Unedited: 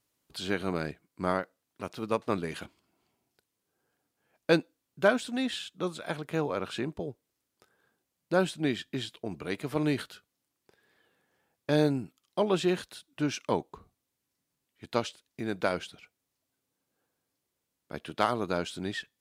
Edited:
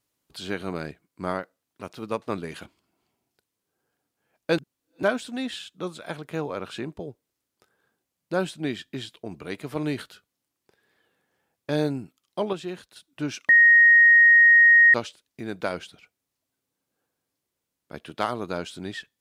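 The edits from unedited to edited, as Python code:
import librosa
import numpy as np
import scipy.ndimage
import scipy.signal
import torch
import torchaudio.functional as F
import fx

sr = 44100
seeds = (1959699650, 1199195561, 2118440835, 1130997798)

y = fx.edit(x, sr, fx.reverse_span(start_s=4.58, length_s=0.45),
    fx.clip_gain(start_s=12.53, length_s=0.43, db=-7.0),
    fx.bleep(start_s=13.49, length_s=1.45, hz=1870.0, db=-11.0), tone=tone)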